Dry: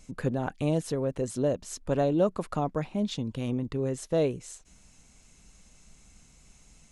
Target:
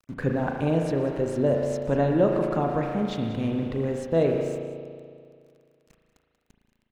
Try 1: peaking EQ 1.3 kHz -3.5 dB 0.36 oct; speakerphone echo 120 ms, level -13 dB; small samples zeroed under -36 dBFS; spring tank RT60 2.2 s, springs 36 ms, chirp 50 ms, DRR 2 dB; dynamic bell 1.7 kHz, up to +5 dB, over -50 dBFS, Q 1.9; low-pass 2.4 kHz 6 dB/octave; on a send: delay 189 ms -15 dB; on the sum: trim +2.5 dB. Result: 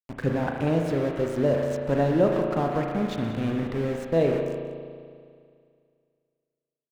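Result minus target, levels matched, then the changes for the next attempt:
small samples zeroed: distortion +10 dB
change: small samples zeroed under -46 dBFS

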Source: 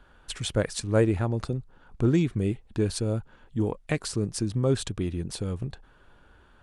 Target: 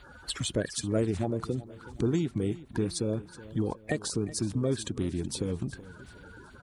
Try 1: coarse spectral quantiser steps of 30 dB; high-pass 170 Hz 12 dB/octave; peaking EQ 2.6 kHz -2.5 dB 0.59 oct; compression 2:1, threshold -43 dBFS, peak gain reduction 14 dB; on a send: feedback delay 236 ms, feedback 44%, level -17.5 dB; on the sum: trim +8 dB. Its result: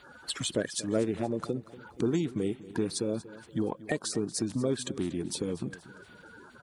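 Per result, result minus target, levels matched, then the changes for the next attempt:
echo 138 ms early; 125 Hz band -4.5 dB
change: feedback delay 374 ms, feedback 44%, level -17.5 dB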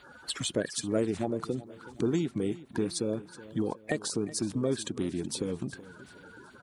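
125 Hz band -4.5 dB
change: high-pass 56 Hz 12 dB/octave

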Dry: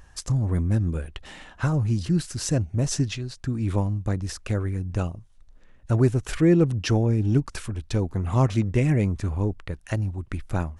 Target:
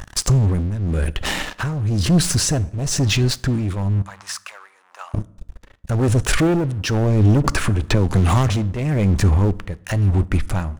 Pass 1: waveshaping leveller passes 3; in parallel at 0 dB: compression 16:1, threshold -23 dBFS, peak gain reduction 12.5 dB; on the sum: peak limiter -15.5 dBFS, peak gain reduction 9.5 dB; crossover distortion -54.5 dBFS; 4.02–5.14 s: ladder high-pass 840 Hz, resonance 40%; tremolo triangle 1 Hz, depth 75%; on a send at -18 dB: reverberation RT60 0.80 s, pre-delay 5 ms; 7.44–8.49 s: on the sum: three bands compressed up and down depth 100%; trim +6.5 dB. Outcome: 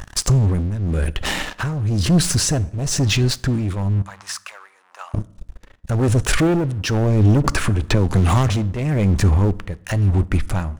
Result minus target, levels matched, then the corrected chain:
crossover distortion: distortion -6 dB
waveshaping leveller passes 3; in parallel at 0 dB: compression 16:1, threshold -23 dBFS, peak gain reduction 12.5 dB; on the sum: peak limiter -15.5 dBFS, peak gain reduction 9.5 dB; crossover distortion -48 dBFS; 4.02–5.14 s: ladder high-pass 840 Hz, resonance 40%; tremolo triangle 1 Hz, depth 75%; on a send at -18 dB: reverberation RT60 0.80 s, pre-delay 5 ms; 7.44–8.49 s: on the sum: three bands compressed up and down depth 100%; trim +6.5 dB

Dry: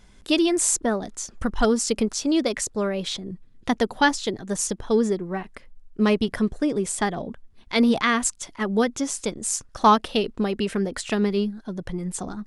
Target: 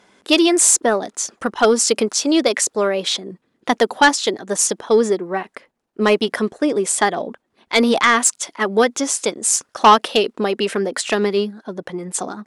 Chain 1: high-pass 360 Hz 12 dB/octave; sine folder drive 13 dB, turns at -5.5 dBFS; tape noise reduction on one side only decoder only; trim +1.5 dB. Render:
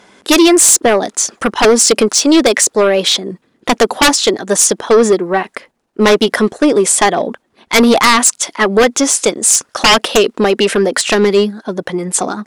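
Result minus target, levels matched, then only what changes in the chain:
sine folder: distortion +13 dB
change: sine folder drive 4 dB, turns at -5.5 dBFS

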